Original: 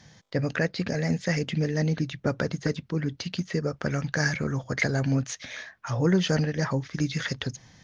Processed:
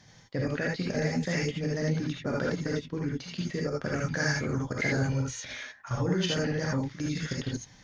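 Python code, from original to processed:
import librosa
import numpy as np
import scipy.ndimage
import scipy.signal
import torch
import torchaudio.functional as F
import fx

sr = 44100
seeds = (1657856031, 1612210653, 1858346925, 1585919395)

y = fx.level_steps(x, sr, step_db=14)
y = fx.comb(y, sr, ms=2.1, depth=0.69, at=(5.02, 5.46))
y = fx.rev_gated(y, sr, seeds[0], gate_ms=100, shape='rising', drr_db=-2.5)
y = y * librosa.db_to_amplitude(-2.0)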